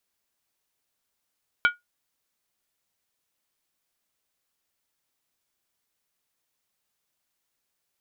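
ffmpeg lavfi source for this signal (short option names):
-f lavfi -i "aevalsrc='0.237*pow(10,-3*t/0.16)*sin(2*PI*1440*t)+0.112*pow(10,-3*t/0.127)*sin(2*PI*2295.4*t)+0.0531*pow(10,-3*t/0.109)*sin(2*PI*3075.8*t)+0.0251*pow(10,-3*t/0.106)*sin(2*PI*3306.2*t)+0.0119*pow(10,-3*t/0.098)*sin(2*PI*3820.3*t)':d=0.63:s=44100"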